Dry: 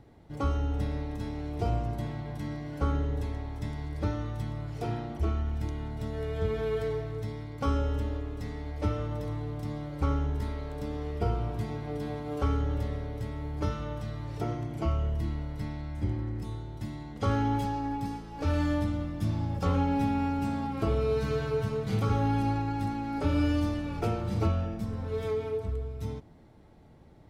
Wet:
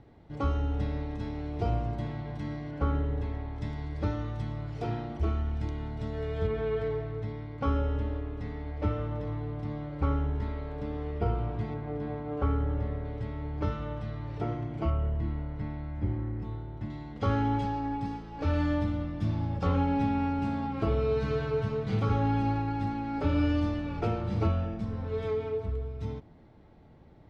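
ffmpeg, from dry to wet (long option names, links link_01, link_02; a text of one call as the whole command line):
ffmpeg -i in.wav -af "asetnsamples=nb_out_samples=441:pad=0,asendcmd='2.71 lowpass f 3000;3.58 lowpass f 4900;6.47 lowpass f 2900;11.74 lowpass f 2000;13.05 lowpass f 3200;14.9 lowpass f 2200;16.9 lowpass f 4100',lowpass=4500" out.wav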